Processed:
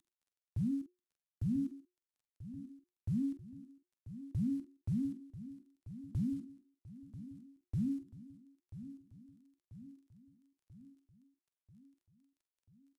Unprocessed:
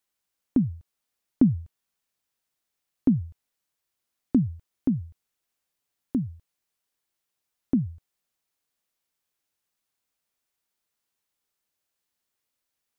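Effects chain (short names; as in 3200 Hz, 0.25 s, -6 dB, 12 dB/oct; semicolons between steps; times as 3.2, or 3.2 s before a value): CVSD 64 kbps; limiter -20 dBFS, peak gain reduction 11 dB; reverse; compressor 5:1, threshold -39 dBFS, peak gain reduction 14.5 dB; reverse; doubler 46 ms -10.5 dB; on a send: feedback echo 0.988 s, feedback 58%, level -13.5 dB; on the sum: frequency shift -360 Hz; gain +4.5 dB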